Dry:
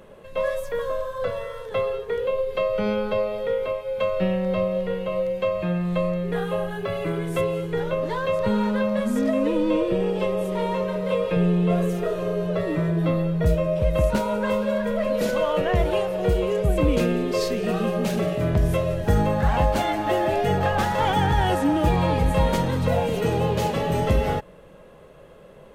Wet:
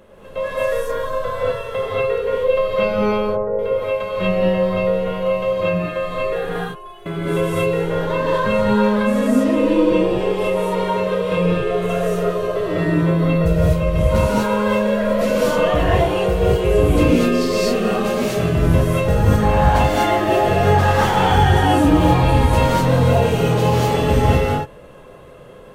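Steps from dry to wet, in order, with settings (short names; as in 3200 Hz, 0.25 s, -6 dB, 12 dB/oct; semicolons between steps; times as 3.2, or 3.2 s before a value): 3.11–3.59 Bessel low-pass 900 Hz, order 8; 6.49–7.06 metallic resonator 350 Hz, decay 0.22 s, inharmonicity 0.002; non-linear reverb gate 0.27 s rising, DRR -7 dB; gain -1 dB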